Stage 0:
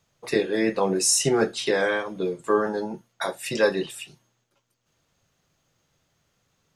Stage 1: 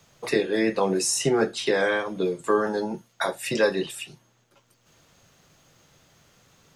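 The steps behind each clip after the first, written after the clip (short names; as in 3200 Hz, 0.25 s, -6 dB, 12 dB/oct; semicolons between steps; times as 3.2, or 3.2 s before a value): three-band squash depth 40%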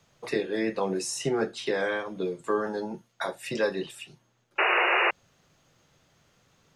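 high shelf 7700 Hz -7.5 dB; painted sound noise, 4.58–5.11, 340–2900 Hz -18 dBFS; gain -5 dB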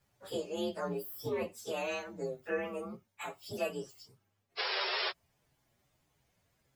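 inharmonic rescaling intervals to 126%; gain -6 dB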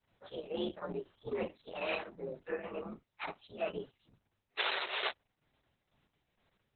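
tremolo triangle 2.2 Hz, depth 70%; gain +2 dB; Opus 6 kbps 48000 Hz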